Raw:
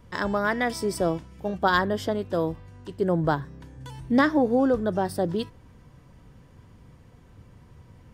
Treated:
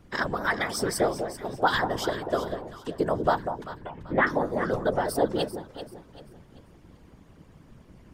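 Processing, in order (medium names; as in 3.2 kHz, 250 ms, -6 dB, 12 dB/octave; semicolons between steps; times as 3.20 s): 3.64–4.27 s: steep low-pass 2.8 kHz 36 dB/octave; harmonic-percussive split harmonic -14 dB; in parallel at -3 dB: peak limiter -21 dBFS, peak gain reduction 11 dB; on the sum: whisper effect; echo whose repeats swap between lows and highs 194 ms, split 980 Hz, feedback 58%, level -7 dB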